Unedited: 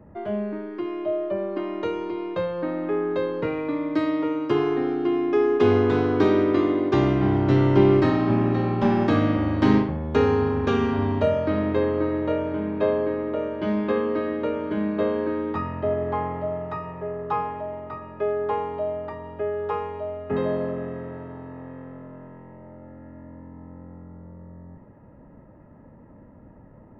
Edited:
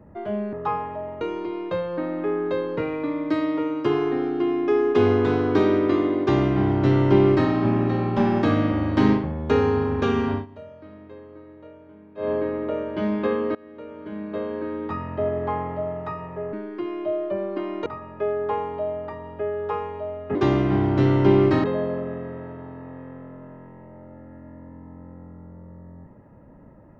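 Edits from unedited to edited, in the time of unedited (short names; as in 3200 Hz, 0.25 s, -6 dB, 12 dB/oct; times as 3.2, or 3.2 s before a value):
0.53–1.86 swap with 17.18–17.86
6.86–8.15 copy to 20.35
10.97–12.96 dip -20.5 dB, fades 0.14 s
14.2–15.94 fade in, from -23 dB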